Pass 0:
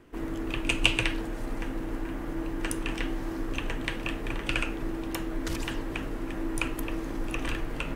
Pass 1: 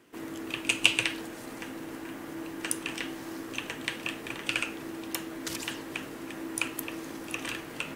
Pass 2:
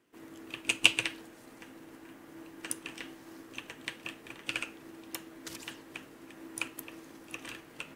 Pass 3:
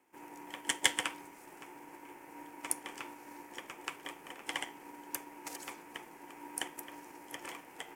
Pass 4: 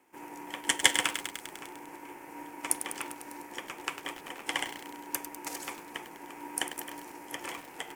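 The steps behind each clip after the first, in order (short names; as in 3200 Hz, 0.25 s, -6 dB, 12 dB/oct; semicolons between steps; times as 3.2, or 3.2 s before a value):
HPF 150 Hz 12 dB/oct; high shelf 2500 Hz +10.5 dB; gain -4.5 dB
upward expander 1.5:1, over -41 dBFS
fixed phaser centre 1400 Hz, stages 4; ring modulator 620 Hz; gain +6 dB
lo-fi delay 0.1 s, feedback 80%, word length 7-bit, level -9.5 dB; gain +5.5 dB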